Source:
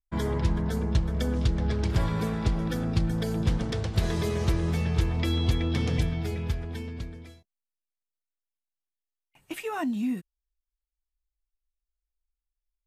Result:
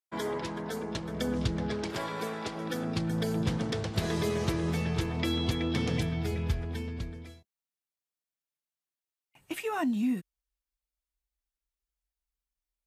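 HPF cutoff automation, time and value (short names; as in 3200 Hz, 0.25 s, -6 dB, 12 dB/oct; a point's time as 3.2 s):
0.84 s 320 Hz
1.49 s 110 Hz
2.01 s 370 Hz
2.51 s 370 Hz
3.2 s 130 Hz
6.01 s 130 Hz
6.54 s 40 Hz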